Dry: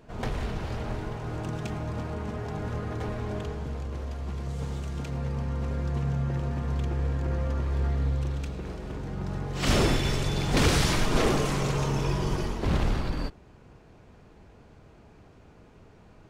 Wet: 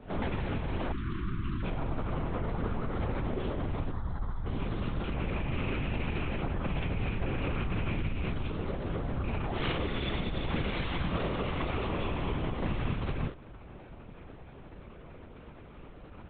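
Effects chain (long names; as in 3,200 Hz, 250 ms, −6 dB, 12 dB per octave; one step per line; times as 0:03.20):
loose part that buzzes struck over −25 dBFS, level −28 dBFS
on a send at −2 dB: convolution reverb, pre-delay 8 ms
on the sum: downward compressor 12 to 1, threshold −31 dBFS, peak gain reduction 16.5 dB
0:03.92–0:04.46: phaser with its sweep stopped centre 1,100 Hz, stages 4
linear-prediction vocoder at 8 kHz whisper
0:00.92–0:01.63: elliptic band-stop filter 350–1,100 Hz, stop band 40 dB
level +3 dB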